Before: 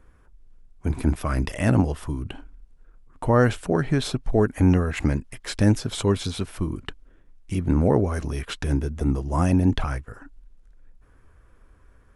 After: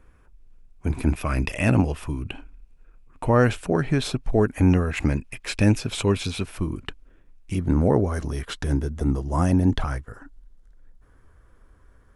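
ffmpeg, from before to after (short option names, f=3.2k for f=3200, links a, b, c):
-af "asetnsamples=n=441:p=0,asendcmd='1.05 equalizer g 12;3.47 equalizer g 5.5;5.17 equalizer g 13;6.41 equalizer g 5;7.56 equalizer g -6',equalizer=f=2.5k:t=o:w=0.23:g=5.5"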